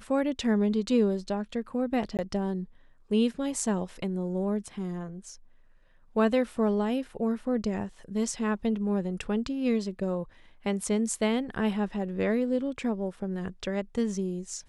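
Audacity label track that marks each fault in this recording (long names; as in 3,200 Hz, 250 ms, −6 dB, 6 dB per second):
2.170000	2.190000	drop-out 18 ms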